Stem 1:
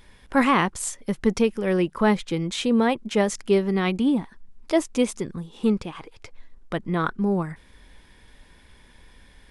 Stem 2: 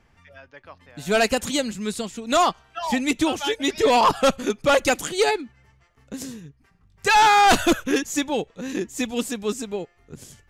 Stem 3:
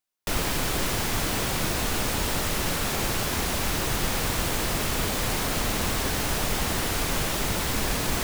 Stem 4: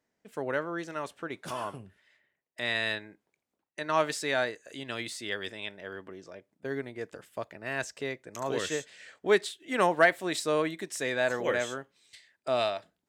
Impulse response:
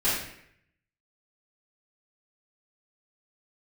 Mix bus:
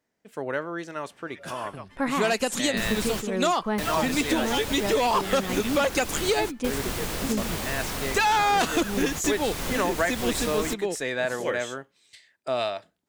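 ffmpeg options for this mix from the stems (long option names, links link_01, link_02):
-filter_complex "[0:a]agate=range=-7dB:threshold=-43dB:ratio=16:detection=peak,adelay=1650,volume=-6dB[link_01];[1:a]highpass=180,adelay=1100,volume=1.5dB[link_02];[2:a]adelay=2500,volume=-4.5dB[link_03];[3:a]volume=2dB,asplit=2[link_04][link_05];[link_05]apad=whole_len=473398[link_06];[link_03][link_06]sidechaingate=range=-33dB:threshold=-55dB:ratio=16:detection=peak[link_07];[link_01][link_02][link_07][link_04]amix=inputs=4:normalize=0,acompressor=threshold=-21dB:ratio=4"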